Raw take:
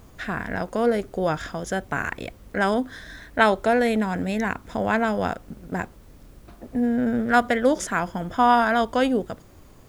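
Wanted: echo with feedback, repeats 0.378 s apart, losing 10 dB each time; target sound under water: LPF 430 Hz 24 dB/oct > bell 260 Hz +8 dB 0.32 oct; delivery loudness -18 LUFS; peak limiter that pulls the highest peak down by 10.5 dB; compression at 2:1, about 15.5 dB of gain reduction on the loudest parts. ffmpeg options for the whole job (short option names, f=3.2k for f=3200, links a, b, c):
-af "acompressor=threshold=-42dB:ratio=2,alimiter=level_in=5.5dB:limit=-24dB:level=0:latency=1,volume=-5.5dB,lowpass=f=430:w=0.5412,lowpass=f=430:w=1.3066,equalizer=f=260:t=o:w=0.32:g=8,aecho=1:1:378|756|1134|1512:0.316|0.101|0.0324|0.0104,volume=21dB"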